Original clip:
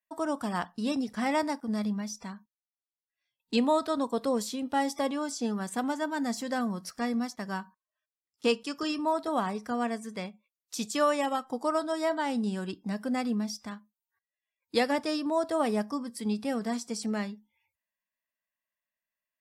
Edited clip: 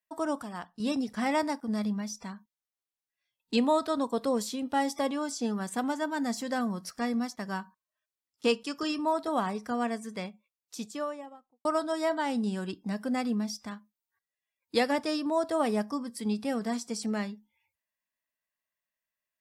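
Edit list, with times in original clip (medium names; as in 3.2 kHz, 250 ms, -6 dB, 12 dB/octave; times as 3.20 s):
0.43–0.80 s: gain -8 dB
10.27–11.65 s: studio fade out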